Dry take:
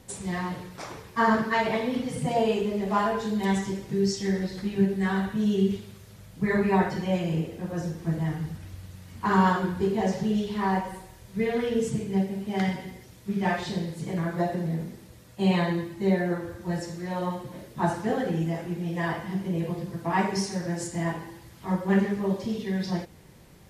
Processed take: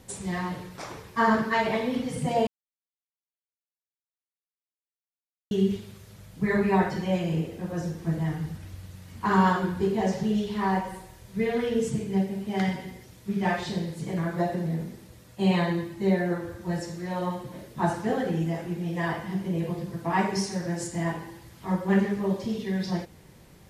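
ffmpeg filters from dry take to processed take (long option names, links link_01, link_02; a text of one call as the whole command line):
ffmpeg -i in.wav -filter_complex "[0:a]asplit=3[link_01][link_02][link_03];[link_01]atrim=end=2.47,asetpts=PTS-STARTPTS,afade=type=out:start_time=2.466:duration=0.004:curve=hsin[link_04];[link_02]atrim=start=2.47:end=5.51,asetpts=PTS-STARTPTS,volume=0[link_05];[link_03]atrim=start=5.51,asetpts=PTS-STARTPTS,afade=type=in:duration=0.004:curve=hsin[link_06];[link_04][link_05][link_06]concat=n=3:v=0:a=1" out.wav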